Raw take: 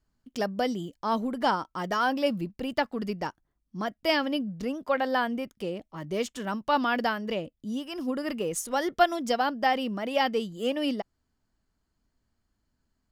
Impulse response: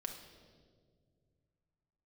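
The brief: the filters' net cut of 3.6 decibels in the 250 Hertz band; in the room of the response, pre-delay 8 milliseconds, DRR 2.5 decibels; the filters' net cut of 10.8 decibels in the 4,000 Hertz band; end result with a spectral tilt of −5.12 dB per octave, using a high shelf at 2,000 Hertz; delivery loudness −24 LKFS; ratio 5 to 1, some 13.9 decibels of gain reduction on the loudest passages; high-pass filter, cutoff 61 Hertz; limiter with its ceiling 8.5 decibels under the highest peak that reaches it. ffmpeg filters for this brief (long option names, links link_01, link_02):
-filter_complex "[0:a]highpass=61,equalizer=frequency=250:width_type=o:gain=-4,highshelf=frequency=2000:gain=-7.5,equalizer=frequency=4000:width_type=o:gain=-8.5,acompressor=threshold=-33dB:ratio=5,alimiter=level_in=5dB:limit=-24dB:level=0:latency=1,volume=-5dB,asplit=2[link_01][link_02];[1:a]atrim=start_sample=2205,adelay=8[link_03];[link_02][link_03]afir=irnorm=-1:irlink=0,volume=-1dB[link_04];[link_01][link_04]amix=inputs=2:normalize=0,volume=13dB"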